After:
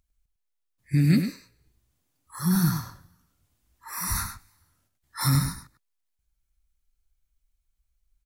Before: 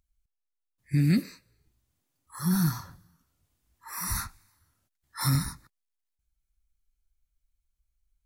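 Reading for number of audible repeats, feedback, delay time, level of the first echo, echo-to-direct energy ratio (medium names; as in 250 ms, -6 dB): 1, no regular repeats, 102 ms, -8.5 dB, -8.5 dB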